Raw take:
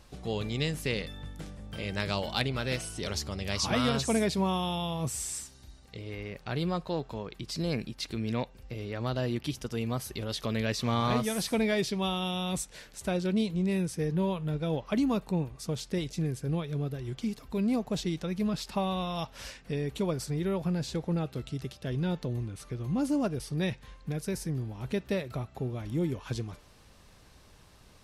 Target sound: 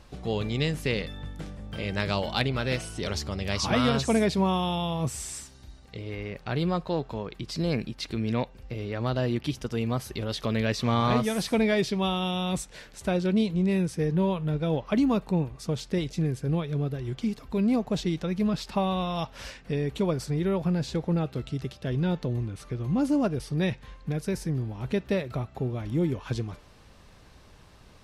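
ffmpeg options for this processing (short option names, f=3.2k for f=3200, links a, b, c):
-af "highshelf=f=5.9k:g=-8.5,volume=4dB"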